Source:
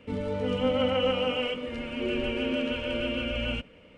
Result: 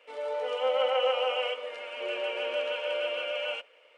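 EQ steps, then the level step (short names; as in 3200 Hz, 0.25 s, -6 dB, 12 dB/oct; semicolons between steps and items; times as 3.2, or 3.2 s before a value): inverse Chebyshev high-pass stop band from 200 Hz, stop band 50 dB; dynamic EQ 700 Hz, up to +6 dB, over -44 dBFS, Q 0.91; -1.5 dB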